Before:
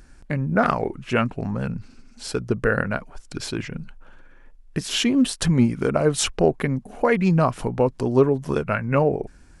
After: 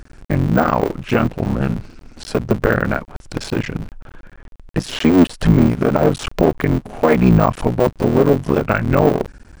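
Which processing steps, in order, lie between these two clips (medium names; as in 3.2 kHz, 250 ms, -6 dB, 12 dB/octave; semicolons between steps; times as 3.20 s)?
cycle switcher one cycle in 3, muted; de-esser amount 70%; treble shelf 5.1 kHz -7 dB; loudness maximiser +10.5 dB; trim -1 dB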